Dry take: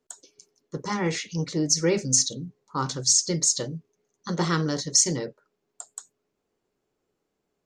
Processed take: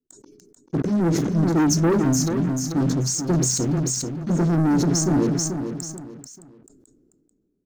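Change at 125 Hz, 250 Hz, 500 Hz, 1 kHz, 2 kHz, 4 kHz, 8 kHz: +9.0, +10.5, +4.5, +2.5, −1.0, −4.5, −2.5 decibels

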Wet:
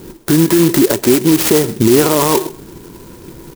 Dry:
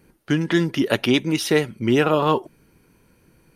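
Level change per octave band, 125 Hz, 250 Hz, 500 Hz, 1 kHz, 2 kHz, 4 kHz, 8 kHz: +7.0, +9.0, +8.0, +5.0, +1.5, +5.5, +17.5 decibels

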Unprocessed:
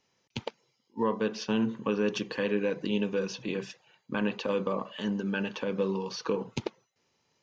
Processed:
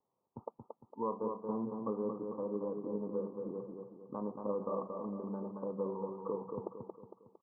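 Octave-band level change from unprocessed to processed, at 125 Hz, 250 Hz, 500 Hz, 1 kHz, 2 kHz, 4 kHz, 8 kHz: −10.0 dB, −9.0 dB, −6.5 dB, −5.0 dB, below −35 dB, below −40 dB, can't be measured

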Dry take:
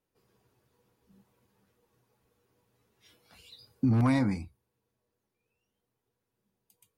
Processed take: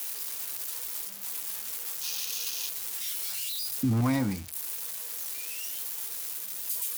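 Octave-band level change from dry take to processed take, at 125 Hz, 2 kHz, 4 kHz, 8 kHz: −1.0 dB, +3.5 dB, +17.5 dB, can't be measured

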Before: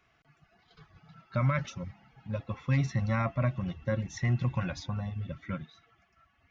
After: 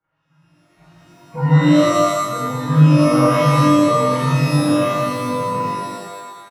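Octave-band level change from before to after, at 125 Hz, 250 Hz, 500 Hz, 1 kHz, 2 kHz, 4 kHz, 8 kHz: +13.0 dB, +20.0 dB, +20.5 dB, +21.5 dB, +12.5 dB, +20.0 dB, can't be measured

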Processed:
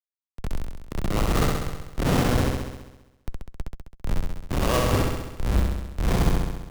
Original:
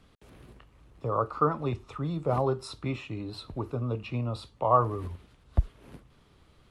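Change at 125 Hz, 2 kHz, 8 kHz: +6.0, +12.5, +19.5 decibels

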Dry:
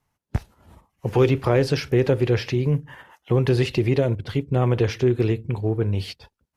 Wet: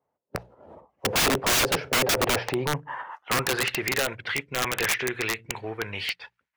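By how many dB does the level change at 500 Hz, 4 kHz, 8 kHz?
−8.0 dB, +8.0 dB, can't be measured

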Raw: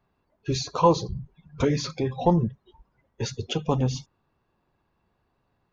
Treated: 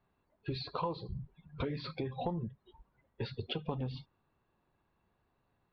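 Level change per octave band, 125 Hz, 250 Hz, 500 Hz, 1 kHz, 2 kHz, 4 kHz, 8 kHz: −12.5 dB, −14.0 dB, −14.5 dB, −14.5 dB, −9.0 dB, −10.0 dB, can't be measured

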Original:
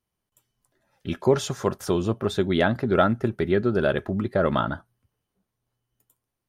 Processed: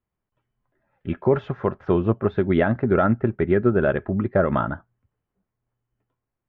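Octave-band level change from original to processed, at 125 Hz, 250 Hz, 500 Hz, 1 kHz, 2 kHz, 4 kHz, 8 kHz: +3.5 dB, +3.0 dB, +2.0 dB, +0.5 dB, +0.5 dB, below −10 dB, below −35 dB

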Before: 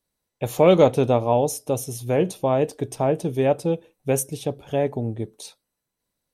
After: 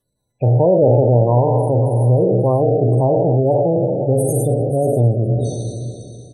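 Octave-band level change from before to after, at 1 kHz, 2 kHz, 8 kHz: +4.0 dB, below −25 dB, 0.0 dB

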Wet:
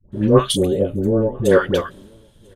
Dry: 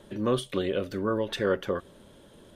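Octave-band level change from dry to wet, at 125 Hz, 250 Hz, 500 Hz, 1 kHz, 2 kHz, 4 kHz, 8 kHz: +15.0, +11.5, +11.5, +9.5, +9.0, +10.5, +16.0 decibels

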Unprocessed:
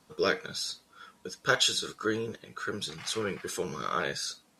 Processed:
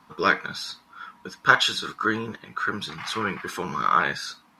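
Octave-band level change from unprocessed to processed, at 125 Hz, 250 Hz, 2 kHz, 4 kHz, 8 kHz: +4.5, +5.0, +9.5, +2.5, −3.5 decibels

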